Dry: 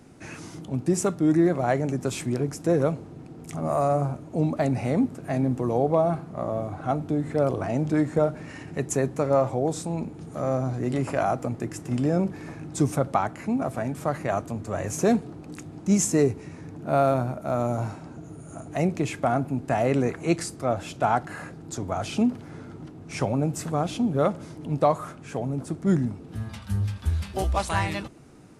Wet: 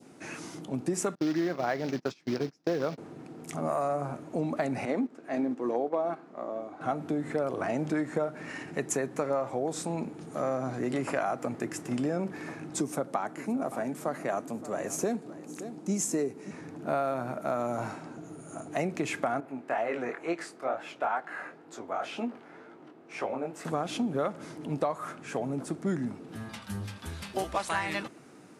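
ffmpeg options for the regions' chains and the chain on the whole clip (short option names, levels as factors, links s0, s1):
-filter_complex "[0:a]asettb=1/sr,asplit=3[s0][s1][s2];[s0]atrim=end=1.154[s3];[s1]atrim=start=1.15:end=2.98,asetpts=PTS-STARTPTS,afade=t=in:d=0.004:c=qsin,afade=t=out:st=1.826:d=0.004:c=qsin,acrusher=bits=5:mode=log:mix=0:aa=0.000001,agate=range=0.0355:threshold=0.0355:ratio=16:release=100:detection=peak,highshelf=f=6700:t=q:w=3:g=-10[s4];[s2]atrim=start=2.976[s5];[s3][s4]acrossfade=d=0.004:c1=hsin:c2=qsin[s6];[s6][s5]acrossfade=d=0.004:c1=qsin:c2=hsin,asettb=1/sr,asplit=3[s7][s8][s9];[s7]atrim=end=4.854[s10];[s8]atrim=start=4.85:end=6.81,asetpts=PTS-STARTPTS,afade=t=in:d=0.004:c=qsin,afade=t=out:st=1.956:d=0.004:c=qsin,agate=range=0.398:threshold=0.0501:ratio=16:release=100:detection=peak,lowpass=6600,lowshelf=f=190:t=q:w=1.5:g=-10[s11];[s9]atrim=start=6.806[s12];[s10][s11]acrossfade=d=0.004:c1=hsin:c2=qsin[s13];[s13][s12]acrossfade=d=0.004:c1=qsin:c2=hsin,asettb=1/sr,asplit=3[s14][s15][s16];[s14]atrim=end=12.804[s17];[s15]atrim=start=12.8:end=16.51,asetpts=PTS-STARTPTS,afade=t=in:d=0.004:c=qsin,afade=t=out:st=3.706:d=0.004:c=qsin,highpass=160,equalizer=f=2000:t=o:w=2.8:g=-6.5,aecho=1:1:570:0.126,atrim=end_sample=163611[s18];[s16]atrim=start=16.506[s19];[s17][s18]acrossfade=d=0.004:c1=hsin:c2=qsin[s20];[s20][s19]acrossfade=d=0.004:c1=qsin:c2=hsin,asettb=1/sr,asplit=3[s21][s22][s23];[s21]atrim=end=19.404[s24];[s22]atrim=start=19.4:end=23.65,asetpts=PTS-STARTPTS,afade=t=in:d=0.004:c=qsin,afade=t=out:st=4.246:d=0.004:c=qsin,bass=f=250:g=-15,treble=f=4000:g=-12,flanger=delay=17:depth=7.6:speed=2.1[s25];[s23]atrim=start=23.646[s26];[s24][s25]acrossfade=d=0.004:c1=hsin:c2=qsin[s27];[s27][s26]acrossfade=d=0.004:c1=qsin:c2=hsin,highpass=210,adynamicequalizer=threshold=0.00891:dfrequency=1700:dqfactor=1.2:tfrequency=1700:tqfactor=1.2:attack=5:release=100:ratio=0.375:range=2.5:mode=boostabove:tftype=bell,acompressor=threshold=0.0501:ratio=6"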